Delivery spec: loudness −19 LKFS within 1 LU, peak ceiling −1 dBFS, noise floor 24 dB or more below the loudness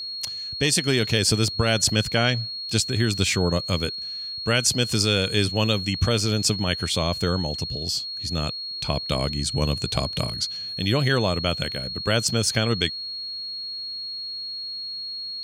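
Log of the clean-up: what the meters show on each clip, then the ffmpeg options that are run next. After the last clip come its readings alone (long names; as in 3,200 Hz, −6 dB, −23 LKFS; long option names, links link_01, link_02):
interfering tone 4,300 Hz; level of the tone −30 dBFS; integrated loudness −23.5 LKFS; sample peak −6.5 dBFS; target loudness −19.0 LKFS
→ -af "bandreject=frequency=4300:width=30"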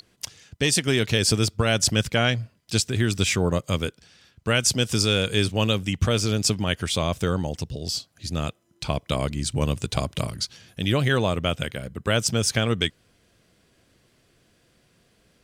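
interfering tone none found; integrated loudness −24.0 LKFS; sample peak −7.0 dBFS; target loudness −19.0 LKFS
→ -af "volume=5dB"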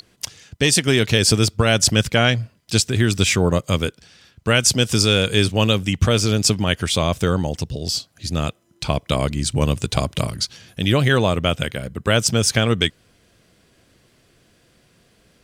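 integrated loudness −19.0 LKFS; sample peak −2.0 dBFS; background noise floor −59 dBFS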